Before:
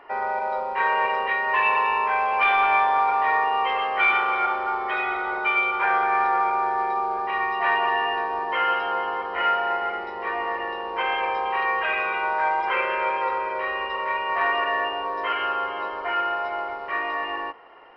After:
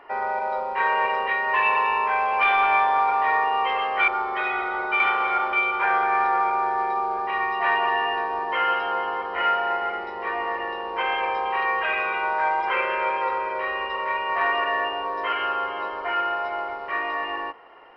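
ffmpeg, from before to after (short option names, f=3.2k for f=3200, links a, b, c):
-filter_complex "[0:a]asplit=4[a][b][c][d];[a]atrim=end=4.082[e];[b]atrim=start=4.608:end=5.532[f];[c]atrim=start=4.078:end=4.612[g];[d]atrim=start=5.528[h];[e][f]acrossfade=d=0.004:c1=hsin:c2=hsin[i];[i][g]acrossfade=d=0.004:c1=hsin:c2=hsin[j];[j][h]acrossfade=d=0.004:c1=hsin:c2=hsin"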